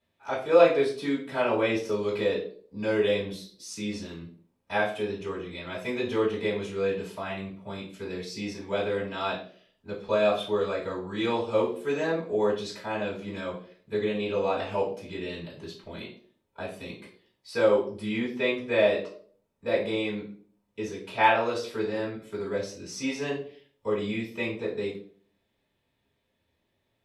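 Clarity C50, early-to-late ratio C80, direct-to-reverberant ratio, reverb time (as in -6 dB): 7.0 dB, 11.5 dB, -9.0 dB, 0.50 s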